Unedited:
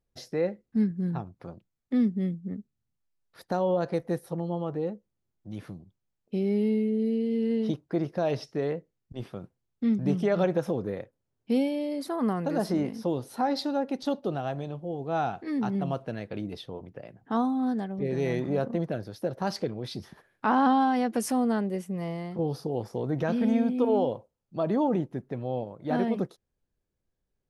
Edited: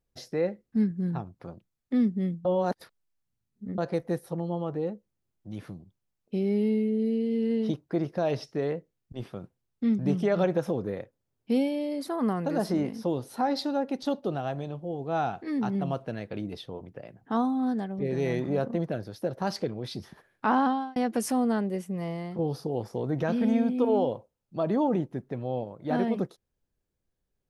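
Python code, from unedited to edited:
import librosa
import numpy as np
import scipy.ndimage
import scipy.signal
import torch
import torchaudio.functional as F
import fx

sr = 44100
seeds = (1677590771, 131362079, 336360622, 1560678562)

y = fx.edit(x, sr, fx.reverse_span(start_s=2.45, length_s=1.33),
    fx.fade_out_span(start_s=20.55, length_s=0.41), tone=tone)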